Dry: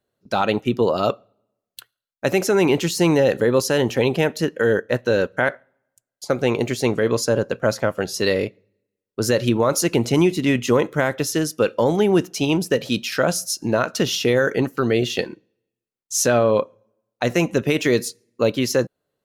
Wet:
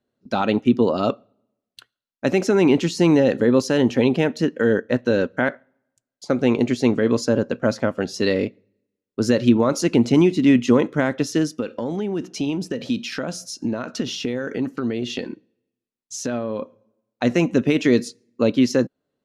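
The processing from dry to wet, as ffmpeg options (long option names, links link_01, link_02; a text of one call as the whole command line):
ffmpeg -i in.wav -filter_complex "[0:a]asplit=3[link_01][link_02][link_03];[link_01]afade=type=out:start_time=11.48:duration=0.02[link_04];[link_02]acompressor=threshold=-22dB:ratio=6:attack=3.2:release=140:knee=1:detection=peak,afade=type=in:start_time=11.48:duration=0.02,afade=type=out:start_time=16.6:duration=0.02[link_05];[link_03]afade=type=in:start_time=16.6:duration=0.02[link_06];[link_04][link_05][link_06]amix=inputs=3:normalize=0,lowpass=6500,equalizer=frequency=250:width_type=o:width=0.69:gain=10,volume=-2.5dB" out.wav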